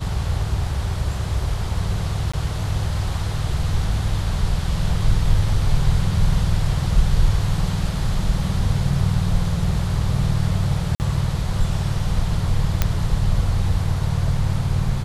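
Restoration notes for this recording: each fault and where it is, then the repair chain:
2.32–2.33 s: dropout 15 ms
10.95–11.00 s: dropout 49 ms
12.82 s: pop -3 dBFS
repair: de-click; interpolate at 2.32 s, 15 ms; interpolate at 10.95 s, 49 ms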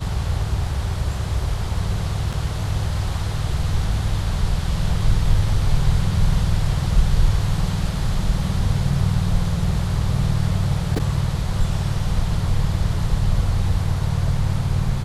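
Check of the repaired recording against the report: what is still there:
nothing left

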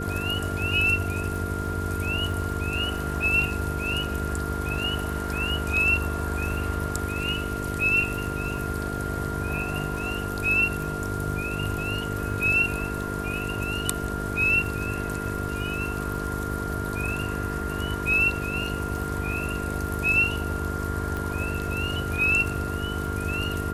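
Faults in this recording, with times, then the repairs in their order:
buzz 50 Hz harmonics 9 -32 dBFS
crackle 50 per s -36 dBFS
whine 1.4 kHz -33 dBFS
21.17 s: pop -18 dBFS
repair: de-click; band-stop 1.4 kHz, Q 30; de-hum 50 Hz, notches 9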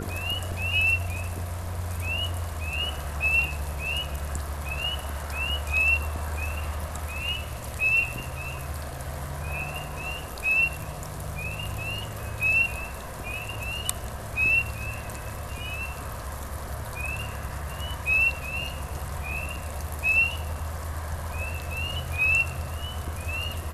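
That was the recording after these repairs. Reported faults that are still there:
21.17 s: pop

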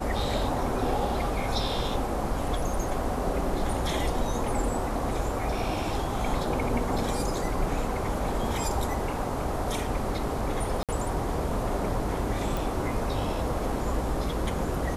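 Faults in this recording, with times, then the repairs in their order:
10.83–10.89 s: dropout 57 ms
12.57 s: pop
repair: de-click; interpolate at 10.83 s, 57 ms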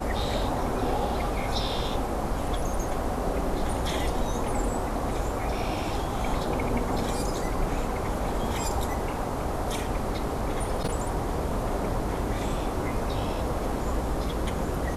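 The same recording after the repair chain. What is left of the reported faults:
nothing left

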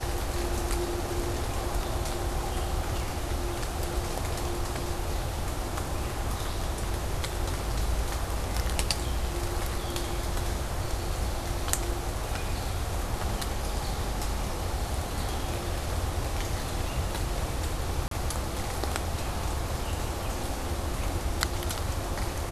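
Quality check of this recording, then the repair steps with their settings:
18.08–18.11 s: dropout 33 ms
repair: interpolate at 18.08 s, 33 ms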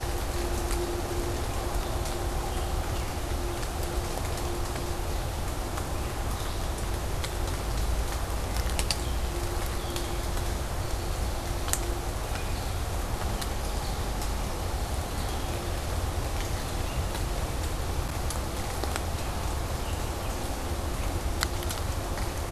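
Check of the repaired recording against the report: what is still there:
nothing left

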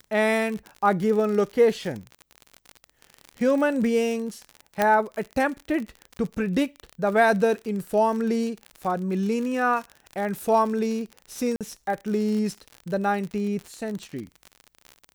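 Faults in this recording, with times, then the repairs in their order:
crackle 54 per s -30 dBFS
4.82 s: pop -8 dBFS
11.56–11.61 s: dropout 47 ms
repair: de-click; interpolate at 11.56 s, 47 ms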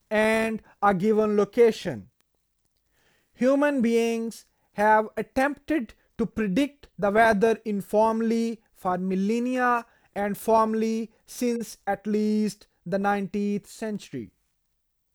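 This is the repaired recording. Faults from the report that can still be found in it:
4.82 s: pop

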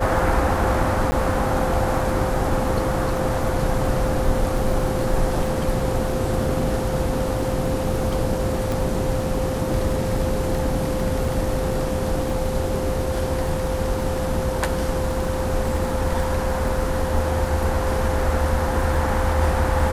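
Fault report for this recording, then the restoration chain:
crackle 22 per s -28 dBFS
whine 520 Hz -26 dBFS
1.11–1.12 s: dropout 10 ms
8.72 s: pop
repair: de-click; band-stop 520 Hz, Q 30; interpolate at 1.11 s, 10 ms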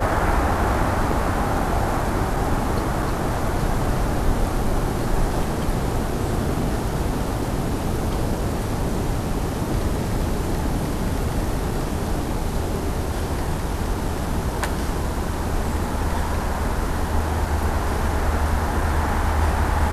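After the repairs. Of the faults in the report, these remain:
nothing left

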